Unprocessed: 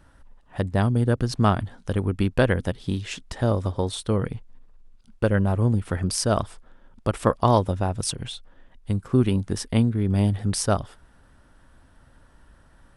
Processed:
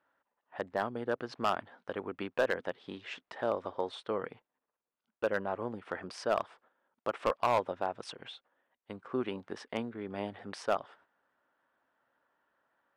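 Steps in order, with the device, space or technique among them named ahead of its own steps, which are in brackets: walkie-talkie (band-pass 500–2400 Hz; hard clipper -17 dBFS, distortion -11 dB; gate -57 dBFS, range -10 dB); trim -3.5 dB

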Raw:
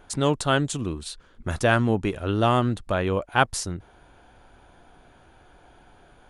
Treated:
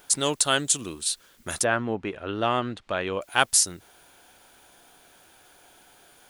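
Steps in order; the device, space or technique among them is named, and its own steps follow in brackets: turntable without a phono preamp (RIAA curve recording; white noise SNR 34 dB); 1.63–3.20 s: low-pass 1.6 kHz -> 3.6 kHz 12 dB/octave; peaking EQ 1 kHz -3 dB 1.4 oct

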